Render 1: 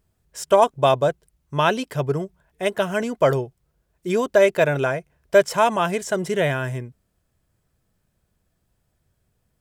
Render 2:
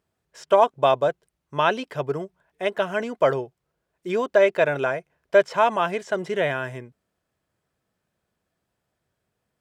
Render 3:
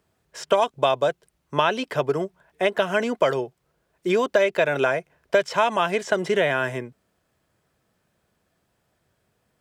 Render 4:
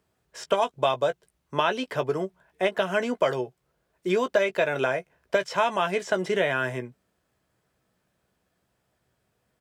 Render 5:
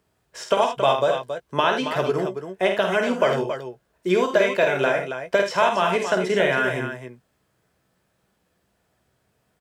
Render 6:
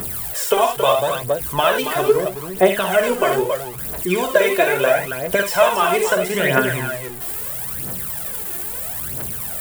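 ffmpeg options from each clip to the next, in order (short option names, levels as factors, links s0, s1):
-filter_complex "[0:a]highpass=f=370:p=1,acrossover=split=5600[s0][s1];[s1]acompressor=threshold=0.00447:ratio=4:attack=1:release=60[s2];[s0][s2]amix=inputs=2:normalize=0,highshelf=f=5700:g=-10.5"
-filter_complex "[0:a]acrossover=split=150|2300[s0][s1][s2];[s0]acompressor=threshold=0.00224:ratio=4[s3];[s1]acompressor=threshold=0.0501:ratio=4[s4];[s2]acompressor=threshold=0.0158:ratio=4[s5];[s3][s4][s5]amix=inputs=3:normalize=0,volume=2.37"
-filter_complex "[0:a]asplit=2[s0][s1];[s1]adelay=16,volume=0.335[s2];[s0][s2]amix=inputs=2:normalize=0,volume=0.668"
-af "aecho=1:1:50|80|275:0.473|0.316|0.376,volume=1.41"
-af "aeval=exprs='val(0)+0.5*0.0224*sgn(val(0))':c=same,aexciter=amount=5.2:drive=5.4:freq=8200,aphaser=in_gain=1:out_gain=1:delay=2.9:decay=0.62:speed=0.76:type=triangular,volume=1.12"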